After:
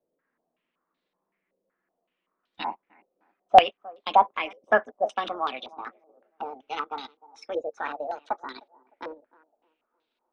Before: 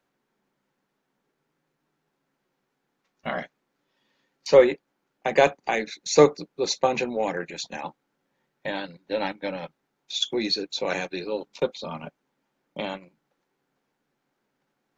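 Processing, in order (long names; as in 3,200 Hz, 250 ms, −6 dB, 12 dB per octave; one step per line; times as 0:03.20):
gliding playback speed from 119% → 171%
feedback echo with a band-pass in the loop 305 ms, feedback 43%, band-pass 460 Hz, level −21 dB
low-pass on a step sequencer 5.3 Hz 540–3,800 Hz
level −7.5 dB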